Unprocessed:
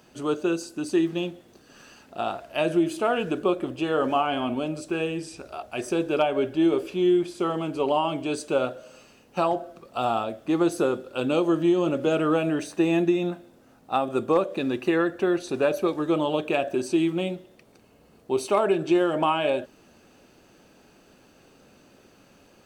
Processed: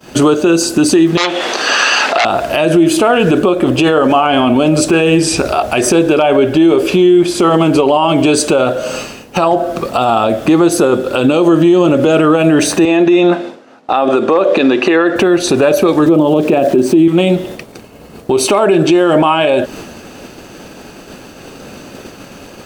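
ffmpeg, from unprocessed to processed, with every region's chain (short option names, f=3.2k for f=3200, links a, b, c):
-filter_complex "[0:a]asettb=1/sr,asplit=3[a][b][c];[a]atrim=end=1.174[d];[b]atrim=start=1.17:end=2.25,asetpts=PTS-STARTPTS,afade=t=in:d=0.004:c=qsin,afade=t=out:st=1.076:d=0.004:c=qsin,aeval=exprs='0.188*sin(PI/2*4.47*val(0)/0.188)':c=same,acompressor=threshold=-32dB:ratio=2.5:attack=3.2:release=140:knee=1:detection=peak,highpass=780,lowpass=4.8k[e];[c]atrim=start=2.246[f];[d][e]acrossfade=d=0.004:c1=hsin:c2=qsin[g];[g][f]acrossfade=d=0.004:c1=qsin:c2=hsin,asettb=1/sr,asplit=3[h][i][j];[h]atrim=end=12.854[k];[i]atrim=start=12.85:end=15.16,asetpts=PTS-STARTPTS,afade=t=in:d=0.004:c=qsin,afade=t=out:st=2.306:d=0.004:c=qsin,highpass=300,lowpass=4.9k,acompressor=threshold=-27dB:ratio=3:attack=3.2:release=140:knee=1:detection=peak[l];[j]atrim=start=15.156[m];[k][l]acrossfade=d=0.004:c1=hsin:c2=qsin[n];[n][m]acrossfade=d=0.004:c1=qsin:c2=hsin,asettb=1/sr,asplit=3[o][p][q];[o]atrim=end=16.064[r];[p]atrim=start=16.06:end=17.08,asetpts=PTS-STARTPTS,afade=t=in:d=0.004:c=qsin,afade=t=out:st=1.016:d=0.004:c=qsin,highpass=160,tiltshelf=f=700:g=8.5,aeval=exprs='val(0)*gte(abs(val(0)),0.00631)':c=same[s];[q]atrim=start=17.076[t];[r][s]acrossfade=d=0.004:c1=hsin:c2=qsin[u];[u][t]acrossfade=d=0.004:c1=qsin:c2=hsin,agate=range=-33dB:threshold=-49dB:ratio=3:detection=peak,acompressor=threshold=-34dB:ratio=3,alimiter=level_in=30dB:limit=-1dB:release=50:level=0:latency=1,volume=-1dB"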